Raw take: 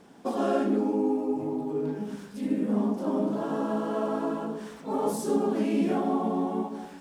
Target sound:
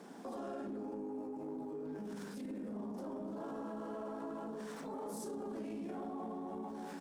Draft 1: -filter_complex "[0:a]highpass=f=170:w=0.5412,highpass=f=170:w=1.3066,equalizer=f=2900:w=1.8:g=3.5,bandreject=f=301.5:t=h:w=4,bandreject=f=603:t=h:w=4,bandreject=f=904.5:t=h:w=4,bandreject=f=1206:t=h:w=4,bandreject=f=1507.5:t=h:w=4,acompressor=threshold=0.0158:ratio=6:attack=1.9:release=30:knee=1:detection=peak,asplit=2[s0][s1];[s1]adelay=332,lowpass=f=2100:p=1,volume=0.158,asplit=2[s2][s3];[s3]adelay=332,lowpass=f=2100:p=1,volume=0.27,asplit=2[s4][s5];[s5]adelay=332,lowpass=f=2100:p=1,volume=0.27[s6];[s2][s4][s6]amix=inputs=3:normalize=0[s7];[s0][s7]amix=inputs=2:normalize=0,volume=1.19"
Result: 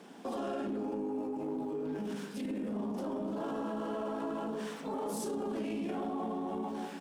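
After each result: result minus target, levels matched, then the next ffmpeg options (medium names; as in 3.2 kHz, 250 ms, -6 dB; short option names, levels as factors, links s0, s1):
compression: peak gain reduction -6.5 dB; 4 kHz band +3.0 dB
-filter_complex "[0:a]highpass=f=170:w=0.5412,highpass=f=170:w=1.3066,equalizer=f=2900:w=1.8:g=3.5,bandreject=f=301.5:t=h:w=4,bandreject=f=603:t=h:w=4,bandreject=f=904.5:t=h:w=4,bandreject=f=1206:t=h:w=4,bandreject=f=1507.5:t=h:w=4,acompressor=threshold=0.00631:ratio=6:attack=1.9:release=30:knee=1:detection=peak,asplit=2[s0][s1];[s1]adelay=332,lowpass=f=2100:p=1,volume=0.158,asplit=2[s2][s3];[s3]adelay=332,lowpass=f=2100:p=1,volume=0.27,asplit=2[s4][s5];[s5]adelay=332,lowpass=f=2100:p=1,volume=0.27[s6];[s2][s4][s6]amix=inputs=3:normalize=0[s7];[s0][s7]amix=inputs=2:normalize=0,volume=1.19"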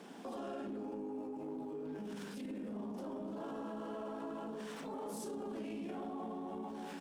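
4 kHz band +4.5 dB
-filter_complex "[0:a]highpass=f=170:w=0.5412,highpass=f=170:w=1.3066,equalizer=f=2900:w=1.8:g=-4.5,bandreject=f=301.5:t=h:w=4,bandreject=f=603:t=h:w=4,bandreject=f=904.5:t=h:w=4,bandreject=f=1206:t=h:w=4,bandreject=f=1507.5:t=h:w=4,acompressor=threshold=0.00631:ratio=6:attack=1.9:release=30:knee=1:detection=peak,asplit=2[s0][s1];[s1]adelay=332,lowpass=f=2100:p=1,volume=0.158,asplit=2[s2][s3];[s3]adelay=332,lowpass=f=2100:p=1,volume=0.27,asplit=2[s4][s5];[s5]adelay=332,lowpass=f=2100:p=1,volume=0.27[s6];[s2][s4][s6]amix=inputs=3:normalize=0[s7];[s0][s7]amix=inputs=2:normalize=0,volume=1.19"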